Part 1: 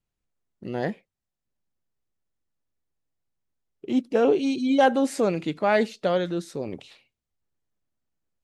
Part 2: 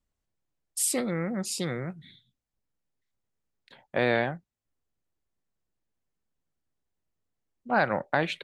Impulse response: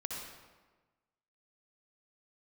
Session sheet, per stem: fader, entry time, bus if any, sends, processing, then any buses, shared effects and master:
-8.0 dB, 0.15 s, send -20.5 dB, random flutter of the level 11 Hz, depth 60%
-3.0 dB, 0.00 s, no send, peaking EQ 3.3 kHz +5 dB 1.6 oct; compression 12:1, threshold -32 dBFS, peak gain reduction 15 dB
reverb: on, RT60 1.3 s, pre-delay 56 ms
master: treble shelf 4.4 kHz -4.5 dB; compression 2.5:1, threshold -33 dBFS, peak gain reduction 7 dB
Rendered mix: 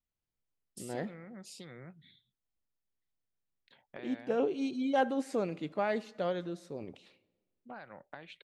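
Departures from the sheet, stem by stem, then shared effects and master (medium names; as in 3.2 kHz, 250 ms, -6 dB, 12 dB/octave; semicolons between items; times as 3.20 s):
stem 2 -3.0 dB -> -11.5 dB; master: missing compression 2.5:1, threshold -33 dBFS, peak gain reduction 7 dB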